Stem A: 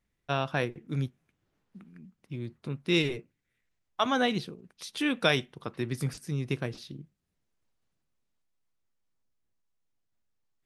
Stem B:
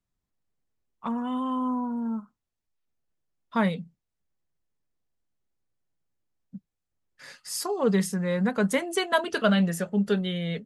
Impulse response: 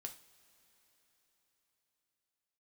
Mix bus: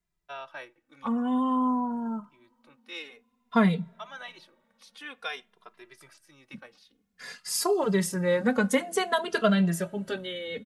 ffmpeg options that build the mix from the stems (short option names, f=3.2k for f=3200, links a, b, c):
-filter_complex "[0:a]highpass=850,highshelf=f=2.3k:g=-9,volume=-2dB,asplit=2[a][b];[b]volume=-20.5dB[c];[1:a]dynaudnorm=f=230:g=17:m=4dB,alimiter=limit=-13dB:level=0:latency=1:release=250,volume=1dB,asplit=3[d][e][f];[e]volume=-8.5dB[g];[f]apad=whole_len=469689[h];[a][h]sidechaincompress=threshold=-31dB:ratio=4:attack=35:release=713[i];[2:a]atrim=start_sample=2205[j];[c][g]amix=inputs=2:normalize=0[k];[k][j]afir=irnorm=-1:irlink=0[l];[i][d][l]amix=inputs=3:normalize=0,asplit=2[m][n];[n]adelay=2.5,afreqshift=-0.53[o];[m][o]amix=inputs=2:normalize=1"